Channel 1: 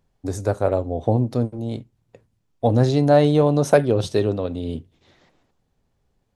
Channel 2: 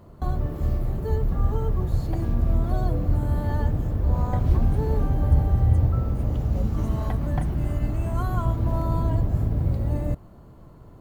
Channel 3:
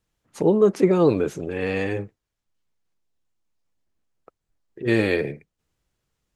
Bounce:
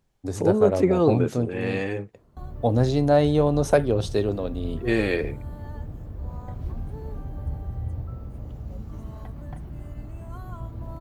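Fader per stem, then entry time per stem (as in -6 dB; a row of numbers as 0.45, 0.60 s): -3.5, -12.0, -2.5 dB; 0.00, 2.15, 0.00 s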